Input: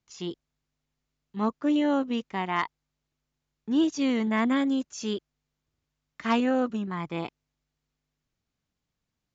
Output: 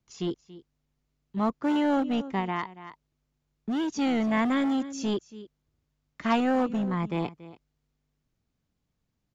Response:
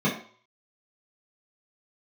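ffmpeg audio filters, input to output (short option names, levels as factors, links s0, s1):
-filter_complex "[0:a]tiltshelf=f=650:g=4,aecho=1:1:282:0.126,acrossover=split=520|1300[s0][s1][s2];[s0]asoftclip=type=hard:threshold=0.0398[s3];[s3][s1][s2]amix=inputs=3:normalize=0,asettb=1/sr,asplit=3[s4][s5][s6];[s4]atrim=end=2.394[s7];[s5]atrim=start=2.39:end=3.99,asetpts=PTS-STARTPTS,afade=t=in:d=0.004:c=qsin,afade=t=out:st=1.596:d=0.004:c=qsin,acompressor=threshold=0.0355:ratio=4[s8];[s6]atrim=start=3.986[s9];[s7][s8]acrossfade=d=0.004:c1=hsin:c2=qsin[s10];[s10][s9]acrossfade=d=0.004:c1=qsin:c2=hsin,volume=1.33"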